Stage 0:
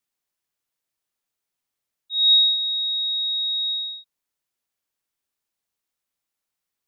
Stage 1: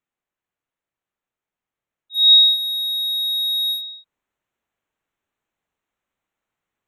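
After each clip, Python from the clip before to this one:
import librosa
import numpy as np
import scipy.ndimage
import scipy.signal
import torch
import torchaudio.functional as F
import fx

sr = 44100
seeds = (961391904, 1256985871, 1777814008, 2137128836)

y = fx.wiener(x, sr, points=9)
y = fx.rider(y, sr, range_db=3, speed_s=2.0)
y = F.gain(torch.from_numpy(y), 6.0).numpy()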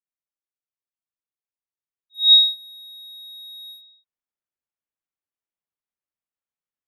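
y = fx.upward_expand(x, sr, threshold_db=-21.0, expansion=2.5)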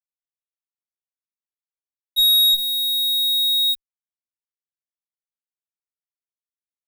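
y = fx.fuzz(x, sr, gain_db=35.0, gate_db=-41.0)
y = fx.env_flatten(y, sr, amount_pct=70)
y = F.gain(torch.from_numpy(y), -1.0).numpy()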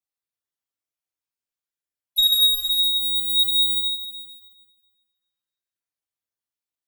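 y = fx.spec_dropout(x, sr, seeds[0], share_pct=25)
y = fx.echo_feedback(y, sr, ms=147, feedback_pct=51, wet_db=-11)
y = fx.rev_fdn(y, sr, rt60_s=1.7, lf_ratio=0.75, hf_ratio=0.85, size_ms=59.0, drr_db=-1.5)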